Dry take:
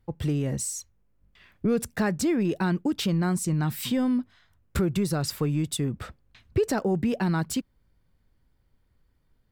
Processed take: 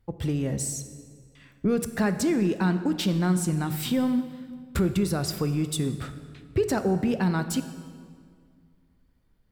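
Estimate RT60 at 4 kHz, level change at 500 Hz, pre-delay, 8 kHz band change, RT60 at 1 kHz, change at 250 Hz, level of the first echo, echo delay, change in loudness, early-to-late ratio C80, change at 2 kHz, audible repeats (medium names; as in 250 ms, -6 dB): 1.5 s, +0.5 dB, 3 ms, +0.5 dB, 1.9 s, +1.0 dB, no echo, no echo, +0.5 dB, 12.0 dB, +0.5 dB, no echo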